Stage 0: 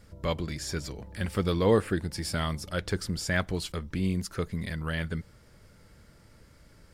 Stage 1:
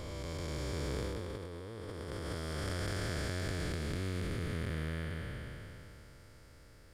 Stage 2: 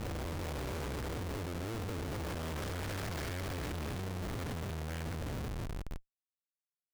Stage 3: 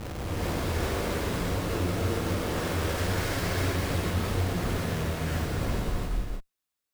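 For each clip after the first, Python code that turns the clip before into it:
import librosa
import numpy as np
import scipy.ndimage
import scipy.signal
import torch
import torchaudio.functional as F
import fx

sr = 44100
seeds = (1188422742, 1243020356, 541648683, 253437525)

y1 = fx.spec_blur(x, sr, span_ms=1060.0)
y1 = fx.peak_eq(y1, sr, hz=190.0, db=-8.5, octaves=0.55)
y1 = fx.over_compress(y1, sr, threshold_db=-37.0, ratio=-0.5)
y2 = fx.schmitt(y1, sr, flips_db=-44.5)
y2 = F.gain(torch.from_numpy(y2), 1.0).numpy()
y3 = fx.rev_gated(y2, sr, seeds[0], gate_ms=450, shape='rising', drr_db=-7.5)
y3 = F.gain(torch.from_numpy(y3), 2.0).numpy()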